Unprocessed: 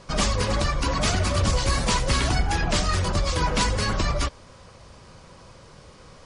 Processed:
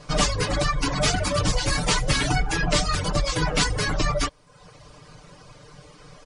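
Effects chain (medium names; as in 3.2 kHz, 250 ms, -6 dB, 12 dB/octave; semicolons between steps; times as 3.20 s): reverb removal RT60 0.73 s; comb 6.7 ms, depth 93%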